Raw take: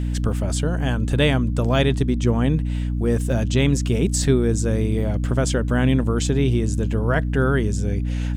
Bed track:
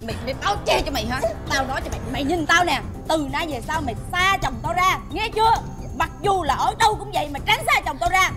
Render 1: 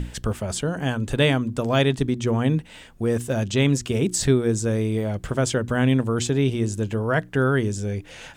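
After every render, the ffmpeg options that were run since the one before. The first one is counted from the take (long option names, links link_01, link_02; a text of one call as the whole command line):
ffmpeg -i in.wav -af "bandreject=frequency=60:width_type=h:width=6,bandreject=frequency=120:width_type=h:width=6,bandreject=frequency=180:width_type=h:width=6,bandreject=frequency=240:width_type=h:width=6,bandreject=frequency=300:width_type=h:width=6,bandreject=frequency=360:width_type=h:width=6" out.wav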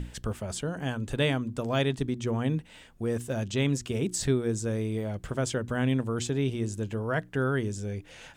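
ffmpeg -i in.wav -af "volume=-7dB" out.wav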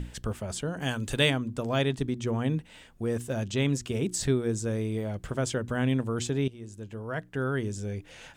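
ffmpeg -i in.wav -filter_complex "[0:a]asplit=3[link_01][link_02][link_03];[link_01]afade=type=out:start_time=0.8:duration=0.02[link_04];[link_02]highshelf=frequency=2100:gain=9.5,afade=type=in:start_time=0.8:duration=0.02,afade=type=out:start_time=1.29:duration=0.02[link_05];[link_03]afade=type=in:start_time=1.29:duration=0.02[link_06];[link_04][link_05][link_06]amix=inputs=3:normalize=0,asplit=2[link_07][link_08];[link_07]atrim=end=6.48,asetpts=PTS-STARTPTS,afade=type=out:start_time=6.476:duration=0.004:curve=hsin:silence=0.158489[link_09];[link_08]atrim=start=6.48,asetpts=PTS-STARTPTS,afade=type=in:duration=1.34:silence=0.158489[link_10];[link_09][link_10]concat=n=2:v=0:a=1" out.wav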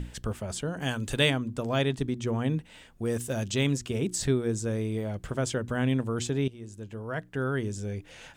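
ffmpeg -i in.wav -filter_complex "[0:a]asettb=1/sr,asplit=3[link_01][link_02][link_03];[link_01]atrim=end=3.054[link_04];[link_02]atrim=start=3.05:end=3.73,asetpts=PTS-STARTPTS,afade=type=in:duration=0.004:curve=qsin,afade=type=out:start_time=0.676:duration=0.004:curve=qsin,highshelf=frequency=4000:gain=7.5[link_05];[link_03]atrim=start=3.726[link_06];[link_04][link_05]acrossfade=duration=0.004:curve1=hsin:curve2=qsin[link_07];[link_07][link_06]acrossfade=duration=0.004:curve1=qsin:curve2=hsin" out.wav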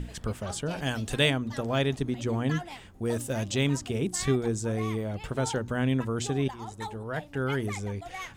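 ffmpeg -i in.wav -i bed.wav -filter_complex "[1:a]volume=-22dB[link_01];[0:a][link_01]amix=inputs=2:normalize=0" out.wav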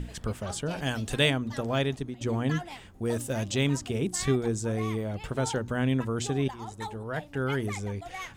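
ffmpeg -i in.wav -filter_complex "[0:a]asplit=2[link_01][link_02];[link_01]atrim=end=2.21,asetpts=PTS-STARTPTS,afade=type=out:start_time=1.62:duration=0.59:curve=qsin:silence=0.251189[link_03];[link_02]atrim=start=2.21,asetpts=PTS-STARTPTS,afade=type=in:duration=0.004:curve=hsin:silence=0.251189[link_04];[link_03][link_04]concat=n=2:v=0:a=1" out.wav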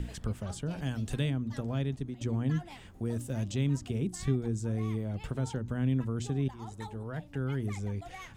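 ffmpeg -i in.wav -filter_complex "[0:a]acrossover=split=270[link_01][link_02];[link_02]acompressor=threshold=-46dB:ratio=2.5[link_03];[link_01][link_03]amix=inputs=2:normalize=0" out.wav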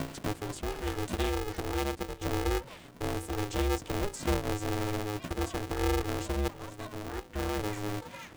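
ffmpeg -i in.wav -af "aeval=exprs='val(0)*sgn(sin(2*PI*210*n/s))':channel_layout=same" out.wav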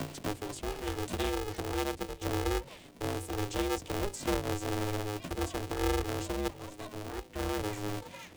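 ffmpeg -i in.wav -filter_complex "[0:a]acrossover=split=270|1500|7300[link_01][link_02][link_03][link_04];[link_01]flanger=delay=20:depth=3.1:speed=1.4[link_05];[link_02]adynamicsmooth=sensitivity=6:basefreq=1100[link_06];[link_05][link_06][link_03][link_04]amix=inputs=4:normalize=0" out.wav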